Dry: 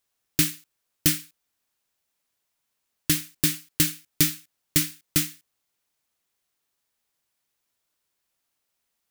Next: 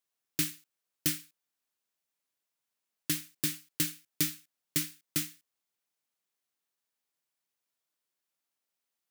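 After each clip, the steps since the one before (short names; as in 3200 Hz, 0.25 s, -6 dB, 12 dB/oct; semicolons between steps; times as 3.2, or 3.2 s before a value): HPF 140 Hz 12 dB/oct; gain -8.5 dB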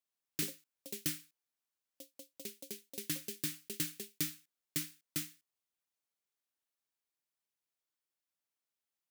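echoes that change speed 0.132 s, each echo +5 st, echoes 2, each echo -6 dB; gain -6.5 dB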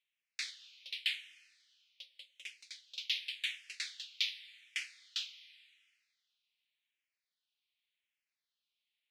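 Butterworth band-pass 2900 Hz, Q 1.5; plate-style reverb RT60 2.2 s, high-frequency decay 0.95×, DRR 14.5 dB; endless phaser -0.88 Hz; gain +14 dB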